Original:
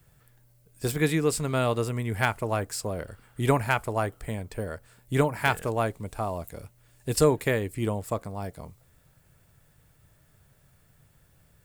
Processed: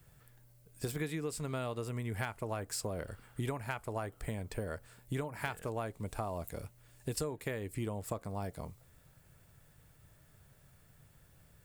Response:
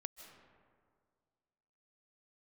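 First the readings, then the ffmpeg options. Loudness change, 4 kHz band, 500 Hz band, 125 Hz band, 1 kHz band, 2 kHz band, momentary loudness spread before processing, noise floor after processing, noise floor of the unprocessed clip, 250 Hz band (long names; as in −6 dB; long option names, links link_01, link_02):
−11.5 dB, −10.5 dB, −12.0 dB, −10.0 dB, −12.0 dB, −12.5 dB, 13 LU, −64 dBFS, −62 dBFS, −11.0 dB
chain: -af "acompressor=threshold=-32dB:ratio=12,volume=-1.5dB"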